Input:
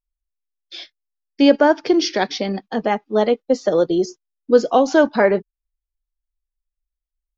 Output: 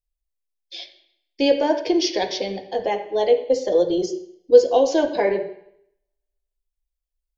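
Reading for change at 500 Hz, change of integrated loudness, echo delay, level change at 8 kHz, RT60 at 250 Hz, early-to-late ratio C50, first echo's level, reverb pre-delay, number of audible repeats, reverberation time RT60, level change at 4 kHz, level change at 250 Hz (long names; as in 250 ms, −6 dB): −1.0 dB, −2.5 dB, no echo audible, can't be measured, 0.70 s, 9.5 dB, no echo audible, 3 ms, no echo audible, 0.70 s, −1.0 dB, −6.0 dB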